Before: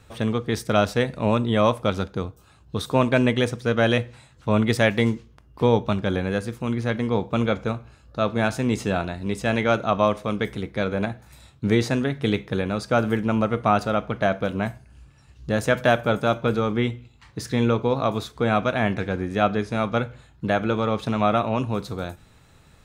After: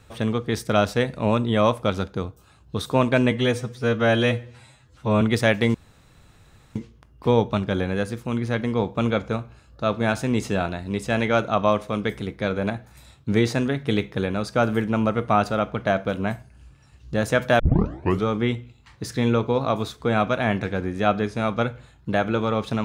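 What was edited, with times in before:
3.31–4.58 stretch 1.5×
5.11 insert room tone 1.01 s
15.95 tape start 0.66 s

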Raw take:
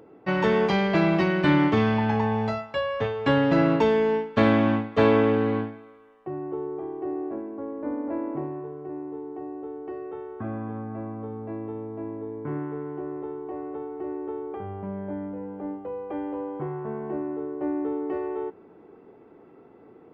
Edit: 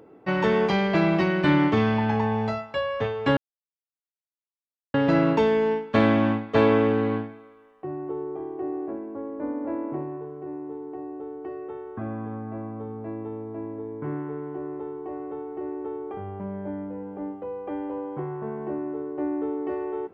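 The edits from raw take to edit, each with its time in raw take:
3.37 insert silence 1.57 s

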